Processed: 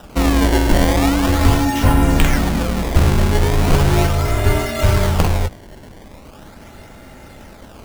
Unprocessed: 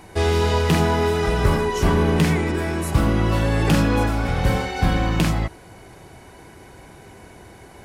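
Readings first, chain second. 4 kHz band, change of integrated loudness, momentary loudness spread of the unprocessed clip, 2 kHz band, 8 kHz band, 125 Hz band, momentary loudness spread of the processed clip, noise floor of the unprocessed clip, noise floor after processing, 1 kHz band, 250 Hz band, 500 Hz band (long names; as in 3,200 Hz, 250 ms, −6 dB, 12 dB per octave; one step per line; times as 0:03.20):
+4.0 dB, +4.0 dB, 4 LU, +2.5 dB, +7.0 dB, +4.0 dB, 4 LU, −45 dBFS, −40 dBFS, +3.0 dB, +4.0 dB, +1.0 dB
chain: frequency shifter −140 Hz
sample-and-hold swept by an LFO 20×, swing 160% 0.39 Hz
level +5 dB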